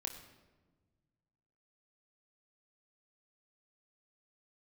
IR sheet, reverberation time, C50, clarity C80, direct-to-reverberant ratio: 1.3 s, 8.5 dB, 9.5 dB, 2.5 dB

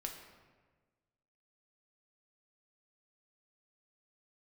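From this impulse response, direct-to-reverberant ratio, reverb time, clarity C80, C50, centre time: 1.5 dB, 1.4 s, 7.5 dB, 5.5 dB, 37 ms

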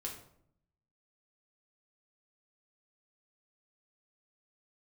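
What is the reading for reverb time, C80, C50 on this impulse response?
0.65 s, 10.5 dB, 6.5 dB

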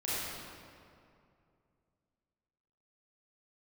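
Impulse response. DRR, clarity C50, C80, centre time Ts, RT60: -10.5 dB, -5.0 dB, -2.5 dB, 0.16 s, 2.4 s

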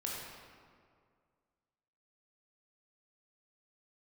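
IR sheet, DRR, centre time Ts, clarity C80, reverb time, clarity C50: -4.0 dB, 0.106 s, 0.5 dB, 2.1 s, -1.0 dB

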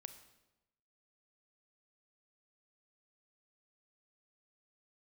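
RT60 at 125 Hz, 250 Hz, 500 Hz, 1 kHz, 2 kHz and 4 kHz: 1.1, 1.0, 1.0, 0.95, 0.85, 0.80 s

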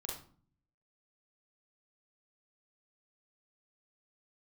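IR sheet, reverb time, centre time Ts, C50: 0.45 s, 40 ms, 3.0 dB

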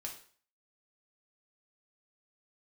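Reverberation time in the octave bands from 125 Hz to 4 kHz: 0.45, 0.45, 0.45, 0.45, 0.45, 0.45 s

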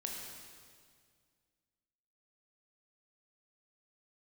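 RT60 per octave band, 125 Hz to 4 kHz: 2.4, 2.3, 2.0, 1.9, 1.8, 1.8 s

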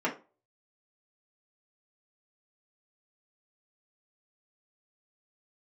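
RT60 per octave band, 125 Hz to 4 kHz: 0.30, 0.35, 0.35, 0.30, 0.25, 0.20 s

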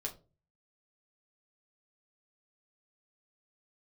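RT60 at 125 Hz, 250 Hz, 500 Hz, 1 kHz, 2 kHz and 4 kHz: 0.60, 0.45, 0.40, 0.25, 0.20, 0.20 s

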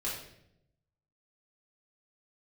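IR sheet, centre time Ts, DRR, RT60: 47 ms, -8.0 dB, 0.75 s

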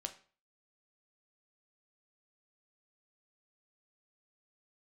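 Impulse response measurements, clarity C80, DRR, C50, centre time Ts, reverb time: 18.0 dB, 6.0 dB, 14.0 dB, 8 ms, 0.40 s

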